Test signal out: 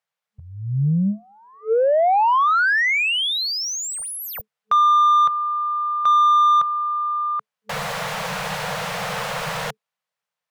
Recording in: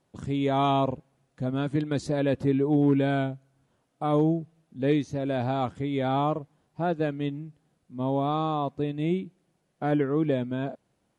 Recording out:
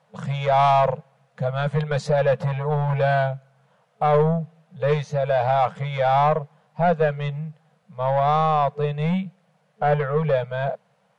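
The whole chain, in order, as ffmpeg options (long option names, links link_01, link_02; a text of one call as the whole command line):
ffmpeg -i in.wav -filter_complex "[0:a]lowshelf=frequency=110:width_type=q:width=3:gain=-8,asplit=2[link_01][link_02];[link_02]highpass=frequency=720:poles=1,volume=19dB,asoftclip=type=tanh:threshold=-9dB[link_03];[link_01][link_03]amix=inputs=2:normalize=0,lowpass=frequency=1400:poles=1,volume=-6dB,afftfilt=real='re*(1-between(b*sr/4096,210,440))':imag='im*(1-between(b*sr/4096,210,440))':win_size=4096:overlap=0.75,volume=2.5dB" out.wav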